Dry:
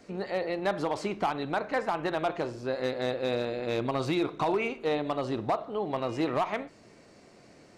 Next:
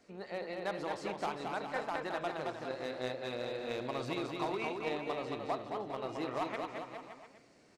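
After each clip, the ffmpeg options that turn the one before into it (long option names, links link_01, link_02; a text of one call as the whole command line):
ffmpeg -i in.wav -af "lowshelf=frequency=460:gain=-4.5,aecho=1:1:220|407|566|701.1|815.9:0.631|0.398|0.251|0.158|0.1,aeval=exprs='0.188*(cos(1*acos(clip(val(0)/0.188,-1,1)))-cos(1*PI/2))+0.0266*(cos(3*acos(clip(val(0)/0.188,-1,1)))-cos(3*PI/2))':channel_layout=same,volume=-4dB" out.wav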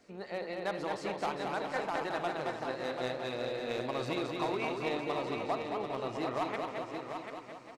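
ffmpeg -i in.wav -af "aecho=1:1:738:0.447,volume=2dB" out.wav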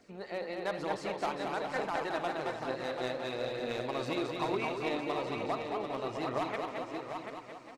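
ffmpeg -i in.wav -af "aphaser=in_gain=1:out_gain=1:delay=4:decay=0.27:speed=1.1:type=triangular" out.wav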